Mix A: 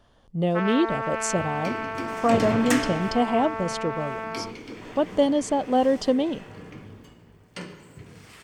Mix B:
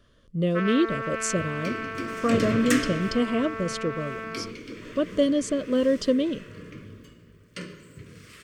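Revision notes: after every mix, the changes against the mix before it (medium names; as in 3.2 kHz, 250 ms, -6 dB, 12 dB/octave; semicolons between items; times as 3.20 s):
master: add Butterworth band-stop 810 Hz, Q 1.6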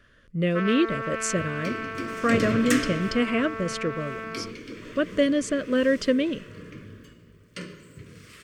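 speech: add high-order bell 1.9 kHz +11 dB 1.1 oct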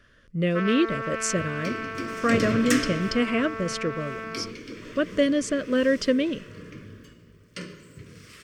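master: add peaking EQ 5.4 kHz +4.5 dB 0.36 oct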